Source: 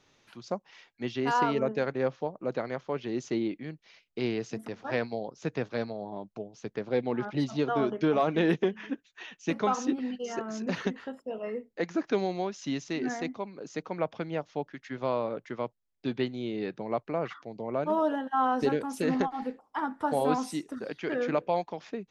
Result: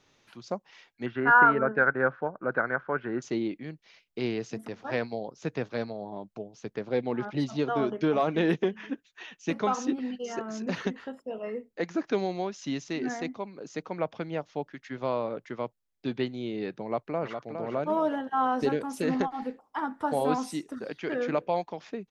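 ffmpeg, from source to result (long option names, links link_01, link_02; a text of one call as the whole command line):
ffmpeg -i in.wav -filter_complex "[0:a]asettb=1/sr,asplit=3[link_01][link_02][link_03];[link_01]atrim=end=1.064[link_04];[link_02]atrim=start=1.06:end=3.22,asetpts=PTS-STARTPTS,afade=type=in:duration=0.004:curve=qsin,afade=type=out:start_time=2.156:duration=0.004:curve=qsin,lowpass=frequency=1500:width_type=q:width=9.4[link_05];[link_03]atrim=start=3.216[link_06];[link_04][link_05]acrossfade=duration=0.004:curve1=hsin:curve2=qsin[link_07];[link_07][link_06]acrossfade=duration=0.004:curve1=qsin:curve2=hsin,asplit=2[link_08][link_09];[link_09]afade=type=in:start_time=16.81:duration=0.01,afade=type=out:start_time=17.47:duration=0.01,aecho=0:1:410|820|1230|1640|2050:0.446684|0.201008|0.0904534|0.040704|0.0183168[link_10];[link_08][link_10]amix=inputs=2:normalize=0" out.wav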